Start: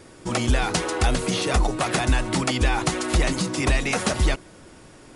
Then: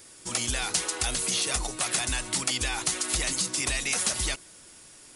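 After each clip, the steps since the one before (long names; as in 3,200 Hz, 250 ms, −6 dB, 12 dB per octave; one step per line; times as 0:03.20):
first-order pre-emphasis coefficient 0.9
in parallel at +1 dB: brickwall limiter −23.5 dBFS, peak gain reduction 10 dB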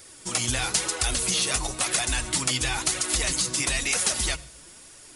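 flanger 1 Hz, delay 1.3 ms, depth 7.1 ms, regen +41%
on a send at −21.5 dB: convolution reverb RT60 0.50 s, pre-delay 77 ms
on the sum: level +6.5 dB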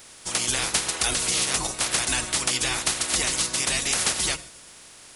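ceiling on every frequency bin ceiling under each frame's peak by 15 dB
level +1 dB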